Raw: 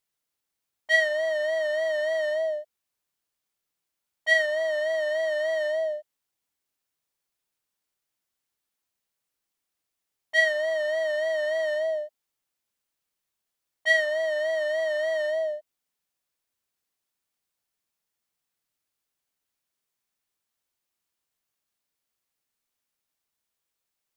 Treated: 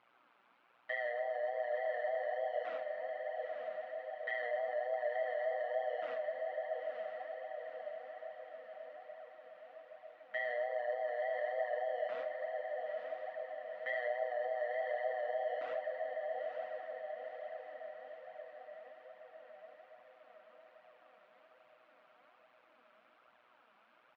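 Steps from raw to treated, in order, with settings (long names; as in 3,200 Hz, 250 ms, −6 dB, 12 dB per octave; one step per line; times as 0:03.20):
converter with a step at zero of −24.5 dBFS
repeating echo 136 ms, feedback 28%, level −9.5 dB
amplitude modulation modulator 120 Hz, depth 85%
noise gate with hold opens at −24 dBFS
loudspeaker in its box 300–2,300 Hz, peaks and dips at 410 Hz −8 dB, 1,300 Hz +5 dB, 1,900 Hz −7 dB
on a send at −11 dB: convolution reverb RT60 3.0 s, pre-delay 5 ms
on the sum: brickwall limiter −22 dBFS, peak gain reduction 6.5 dB
feedback delay with all-pass diffusion 941 ms, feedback 56%, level −6 dB
in parallel at +0.5 dB: downward compressor, threshold −35 dBFS, peak gain reduction 9 dB
on the sum: flanger 1.2 Hz, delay 0.9 ms, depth 4.4 ms, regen +34%
level −6 dB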